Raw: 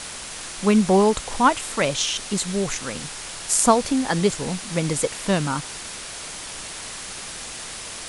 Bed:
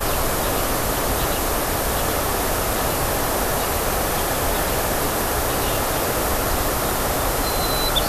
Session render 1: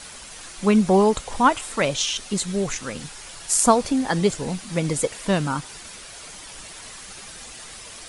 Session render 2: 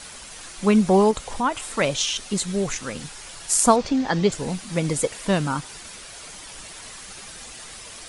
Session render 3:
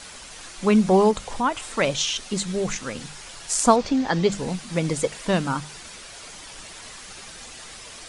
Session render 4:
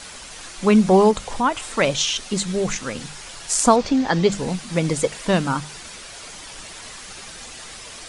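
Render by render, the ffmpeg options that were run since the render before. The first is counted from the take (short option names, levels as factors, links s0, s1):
-af "afftdn=nr=8:nf=-35"
-filter_complex "[0:a]asettb=1/sr,asplit=3[s0][s1][s2];[s0]atrim=end=1.114[s3];[s1]atrim=start=1.11:end=1.75,asetpts=PTS-STARTPTS,afade=t=in:d=0.004:c=qsin,afade=t=out:st=0.636:d=0.004:c=qsin,acompressor=threshold=0.0398:ratio=1.5:attack=3.2:release=140:knee=1:detection=peak[s4];[s2]atrim=start=1.746[s5];[s3][s4]acrossfade=d=0.004:c1=hsin:c2=qsin[s6];[s6][s5]acrossfade=d=0.004:c1=qsin:c2=hsin,asettb=1/sr,asplit=3[s7][s8][s9];[s7]atrim=end=3.764[s10];[s8]atrim=start=3.76:end=4.32,asetpts=PTS-STARTPTS,afade=t=in:d=0.004:c=qsin,afade=t=out:st=0.556:d=0.004:c=qsin,lowpass=f=6200:w=0.5412,lowpass=f=6200:w=1.3066[s11];[s9]atrim=start=4.316[s12];[s10][s11]acrossfade=d=0.004:c1=hsin:c2=qsin[s13];[s13][s12]acrossfade=d=0.004:c1=qsin:c2=hsin"
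-filter_complex "[0:a]acrossover=split=8900[s0][s1];[s1]acompressor=threshold=0.00178:ratio=4:attack=1:release=60[s2];[s0][s2]amix=inputs=2:normalize=0,bandreject=f=50:t=h:w=6,bandreject=f=100:t=h:w=6,bandreject=f=150:t=h:w=6,bandreject=f=200:t=h:w=6"
-af "volume=1.41,alimiter=limit=0.708:level=0:latency=1"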